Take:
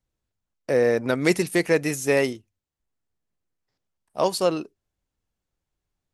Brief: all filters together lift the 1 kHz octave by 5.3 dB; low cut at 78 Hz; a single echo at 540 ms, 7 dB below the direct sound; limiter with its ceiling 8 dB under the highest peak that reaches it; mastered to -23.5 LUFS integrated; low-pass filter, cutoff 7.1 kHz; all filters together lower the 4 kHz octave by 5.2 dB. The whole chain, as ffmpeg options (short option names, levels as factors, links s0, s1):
-af "highpass=78,lowpass=7100,equalizer=f=1000:t=o:g=7,equalizer=f=4000:t=o:g=-6.5,alimiter=limit=0.224:level=0:latency=1,aecho=1:1:540:0.447,volume=1.33"